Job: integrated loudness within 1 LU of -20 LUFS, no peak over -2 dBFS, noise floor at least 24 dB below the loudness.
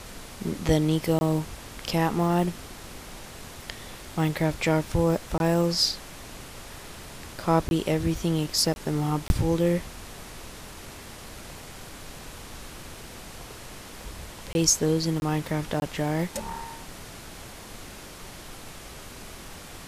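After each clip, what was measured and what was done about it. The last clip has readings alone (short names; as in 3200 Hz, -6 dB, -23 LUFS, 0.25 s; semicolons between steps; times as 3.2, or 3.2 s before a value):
dropouts 8; longest dropout 21 ms; noise floor -43 dBFS; noise floor target -50 dBFS; loudness -26.0 LUFS; peak -7.0 dBFS; loudness target -20.0 LUFS
-> interpolate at 1.19/5.38/7.69/8.74/9.28/14.53/15.2/15.8, 21 ms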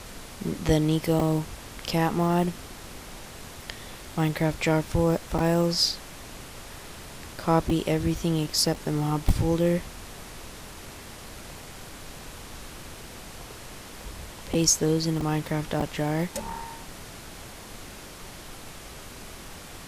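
dropouts 0; noise floor -43 dBFS; noise floor target -50 dBFS
-> noise print and reduce 7 dB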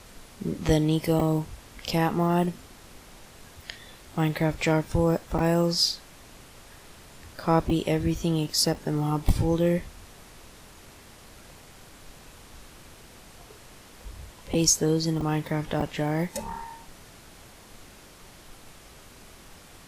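noise floor -50 dBFS; loudness -26.0 LUFS; peak -7.0 dBFS; loudness target -20.0 LUFS
-> gain +6 dB; limiter -2 dBFS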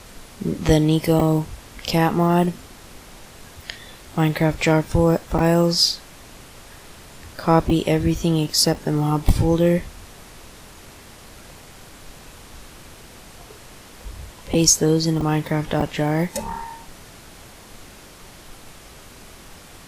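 loudness -20.0 LUFS; peak -2.0 dBFS; noise floor -44 dBFS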